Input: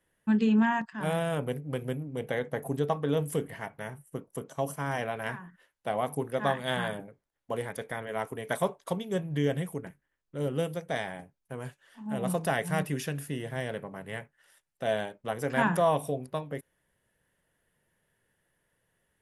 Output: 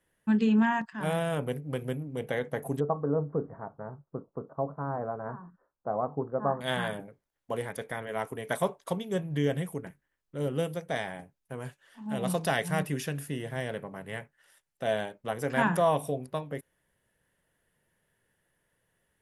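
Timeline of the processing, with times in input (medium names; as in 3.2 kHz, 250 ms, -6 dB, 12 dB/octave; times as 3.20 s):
2.80–6.61 s: elliptic low-pass 1.3 kHz, stop band 60 dB
12.02–12.68 s: peaking EQ 4.3 kHz +7.5 dB 1.2 oct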